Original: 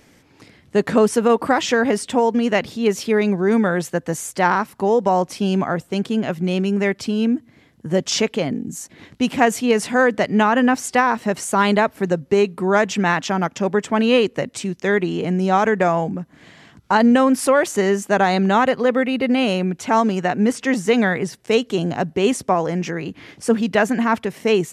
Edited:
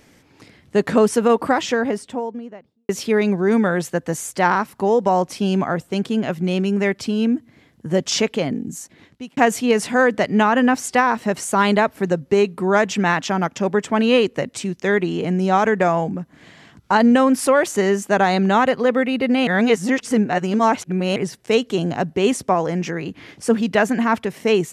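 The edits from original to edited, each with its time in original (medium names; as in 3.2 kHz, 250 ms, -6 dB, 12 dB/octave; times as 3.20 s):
1.30–2.89 s: studio fade out
8.68–9.37 s: fade out
19.47–21.16 s: reverse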